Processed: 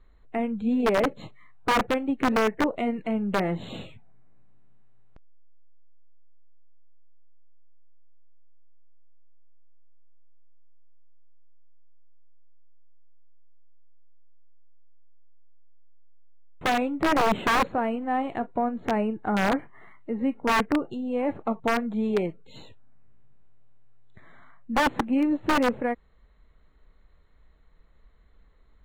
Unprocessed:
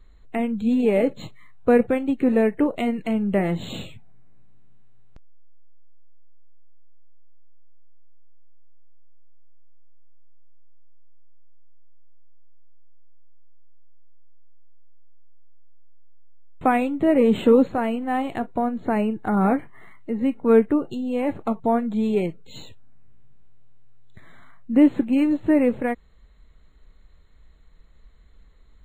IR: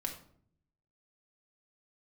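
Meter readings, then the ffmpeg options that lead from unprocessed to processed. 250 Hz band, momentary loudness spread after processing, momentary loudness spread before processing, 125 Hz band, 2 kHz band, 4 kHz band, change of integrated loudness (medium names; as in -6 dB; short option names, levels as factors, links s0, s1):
-6.0 dB, 7 LU, 10 LU, -5.0 dB, +4.0 dB, +5.5 dB, -4.5 dB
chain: -filter_complex "[0:a]aeval=exprs='(mod(3.98*val(0)+1,2)-1)/3.98':c=same,asplit=2[s0][s1];[s1]highpass=f=720:p=1,volume=1.78,asoftclip=type=tanh:threshold=0.266[s2];[s0][s2]amix=inputs=2:normalize=0,lowpass=f=1200:p=1,volume=0.501"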